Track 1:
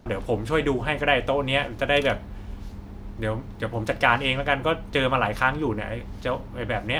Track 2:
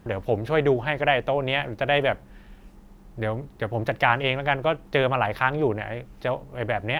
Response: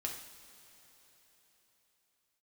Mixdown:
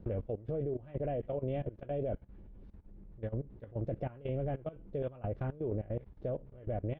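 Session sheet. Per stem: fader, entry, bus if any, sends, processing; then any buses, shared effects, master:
−7.5 dB, 0.00 s, no send, downward compressor 6 to 1, threshold −24 dBFS, peak gain reduction 10.5 dB; multi-voice chorus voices 2, 1 Hz, delay 15 ms, depth 3.7 ms; automatic ducking −10 dB, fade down 0.25 s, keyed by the second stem
0.0 dB, 0.4 ms, no send, de-essing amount 75%; Butterworth low-pass 580 Hz 36 dB per octave; square-wave tremolo 2.1 Hz, depth 65%, duty 55%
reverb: not used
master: low-pass filter 2,700 Hz 12 dB per octave; low-shelf EQ 61 Hz +6.5 dB; output level in coarse steps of 17 dB

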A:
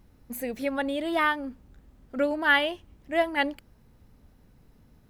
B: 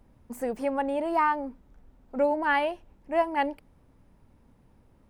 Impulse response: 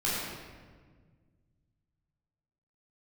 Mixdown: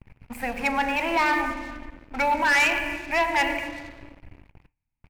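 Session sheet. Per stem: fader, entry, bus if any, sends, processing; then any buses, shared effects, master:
−5.0 dB, 0.00 s, send −17 dB, parametric band 2,800 Hz −5.5 dB 1.4 octaves; automatic ducking −11 dB, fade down 0.50 s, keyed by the second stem
+0.5 dB, 0.4 ms, send −17 dB, elliptic band-stop filter 130–780 Hz, stop band 40 dB; brickwall limiter −23 dBFS, peak gain reduction 8.5 dB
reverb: on, RT60 1.6 s, pre-delay 12 ms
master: drawn EQ curve 120 Hz 0 dB, 1,400 Hz −3 dB, 2,500 Hz +13 dB, 3,600 Hz −13 dB; noise gate with hold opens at −47 dBFS; leveller curve on the samples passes 3

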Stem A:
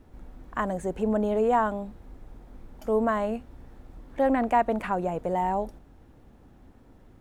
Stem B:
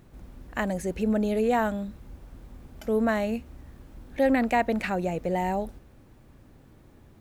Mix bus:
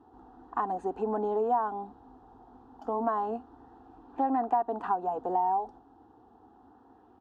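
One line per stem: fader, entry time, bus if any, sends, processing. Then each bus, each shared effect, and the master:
−1.5 dB, 0.00 s, no send, parametric band 750 Hz +13.5 dB 0.69 octaves
−11.5 dB, 0.00 s, no send, comb filter 6.6 ms, depth 99%; auto-filter low-pass sine 0.31 Hz 230–2,500 Hz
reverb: not used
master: band-pass filter 130–3,300 Hz; phaser with its sweep stopped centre 590 Hz, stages 6; downward compressor 3 to 1, threshold −26 dBFS, peak gain reduction 10.5 dB

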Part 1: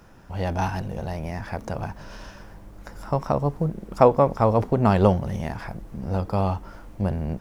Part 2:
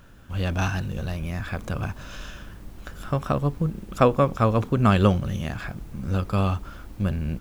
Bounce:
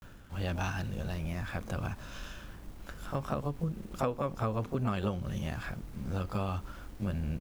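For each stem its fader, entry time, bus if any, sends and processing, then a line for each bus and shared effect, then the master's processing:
−16.0 dB, 0.00 s, no send, bit reduction 7 bits
+2.0 dB, 21 ms, polarity flipped, no send, automatic ducking −8 dB, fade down 0.30 s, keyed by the first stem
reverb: not used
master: downward compressor 4 to 1, threshold −29 dBFS, peak gain reduction 10.5 dB

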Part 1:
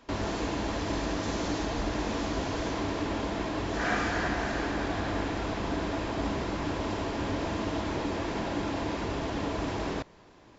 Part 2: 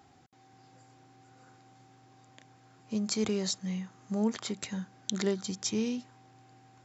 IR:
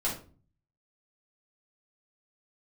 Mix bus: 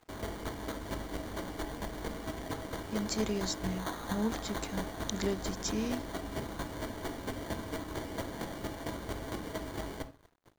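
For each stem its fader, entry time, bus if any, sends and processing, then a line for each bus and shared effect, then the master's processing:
−1.5 dB, 0.00 s, send −10.5 dB, brickwall limiter −26 dBFS, peak gain reduction 8.5 dB; sample-rate reduction 2,600 Hz, jitter 0%; square-wave tremolo 4.4 Hz, depth 60%, duty 15%
−3.0 dB, 0.00 s, no send, no processing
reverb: on, RT60 0.40 s, pre-delay 5 ms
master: dead-zone distortion −57 dBFS

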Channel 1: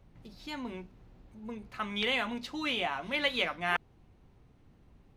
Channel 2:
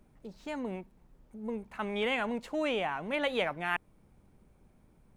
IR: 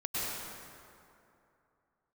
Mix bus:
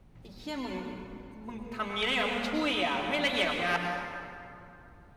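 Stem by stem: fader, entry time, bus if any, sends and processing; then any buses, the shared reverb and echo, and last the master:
−2.0 dB, 0.00 s, send −4 dB, soft clipping −21.5 dBFS, distortion −17 dB
−4.5 dB, 0.00 s, no send, no processing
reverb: on, RT60 2.7 s, pre-delay 93 ms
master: no processing

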